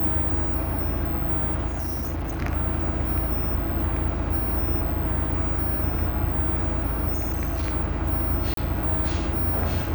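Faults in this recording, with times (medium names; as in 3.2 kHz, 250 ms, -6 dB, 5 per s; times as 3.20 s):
1.67–2.43 s: clipped -25 dBFS
7.13–7.73 s: clipped -22 dBFS
8.54–8.57 s: dropout 32 ms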